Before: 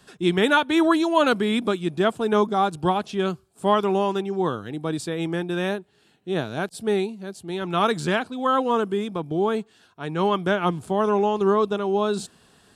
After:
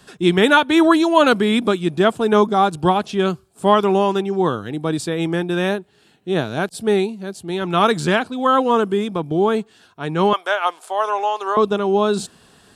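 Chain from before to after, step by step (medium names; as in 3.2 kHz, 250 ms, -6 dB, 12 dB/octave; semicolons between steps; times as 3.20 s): 10.33–11.57 s: high-pass 590 Hz 24 dB/octave; trim +5.5 dB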